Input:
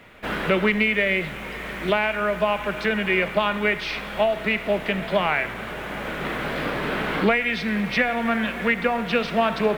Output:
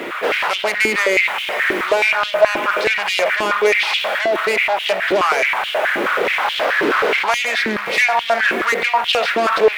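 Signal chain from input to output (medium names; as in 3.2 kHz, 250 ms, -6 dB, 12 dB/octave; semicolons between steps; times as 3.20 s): saturation -24.5 dBFS, distortion -7 dB; loudness maximiser +34.5 dB; step-sequenced high-pass 9.4 Hz 340–3100 Hz; trim -15 dB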